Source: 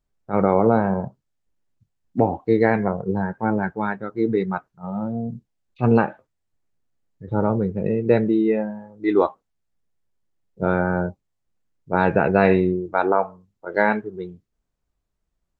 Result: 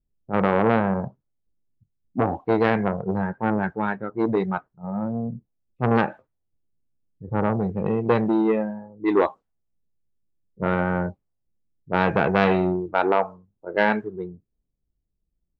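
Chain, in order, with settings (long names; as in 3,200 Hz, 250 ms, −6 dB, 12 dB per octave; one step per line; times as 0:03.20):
low-pass that shuts in the quiet parts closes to 340 Hz, open at −17.5 dBFS
saturating transformer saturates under 1,000 Hz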